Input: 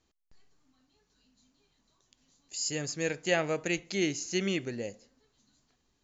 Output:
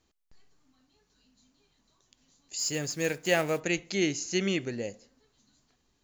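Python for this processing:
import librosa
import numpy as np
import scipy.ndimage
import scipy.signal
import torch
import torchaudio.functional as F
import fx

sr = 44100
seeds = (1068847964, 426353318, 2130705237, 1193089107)

y = fx.block_float(x, sr, bits=5, at=(2.57, 3.59), fade=0.02)
y = y * 10.0 ** (2.0 / 20.0)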